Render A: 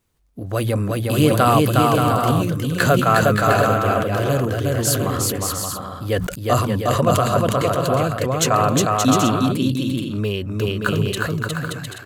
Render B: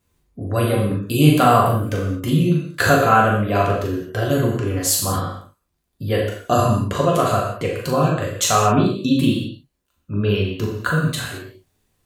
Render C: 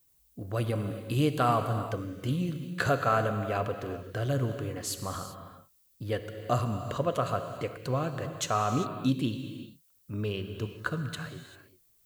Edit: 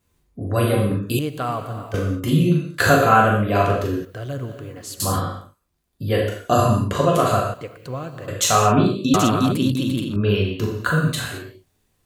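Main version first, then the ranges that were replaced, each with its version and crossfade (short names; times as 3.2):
B
1.19–1.94 from C
4.05–5 from C
7.54–8.28 from C
9.14–10.16 from A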